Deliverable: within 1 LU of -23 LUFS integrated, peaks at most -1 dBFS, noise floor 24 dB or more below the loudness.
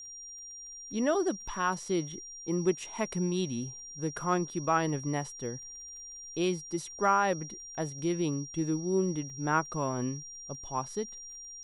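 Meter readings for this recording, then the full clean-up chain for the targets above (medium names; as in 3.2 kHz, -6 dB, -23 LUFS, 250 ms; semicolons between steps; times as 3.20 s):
tick rate 25 per s; steady tone 5.7 kHz; tone level -43 dBFS; loudness -32.0 LUFS; peak level -14.0 dBFS; loudness target -23.0 LUFS
-> de-click; band-stop 5.7 kHz, Q 30; trim +9 dB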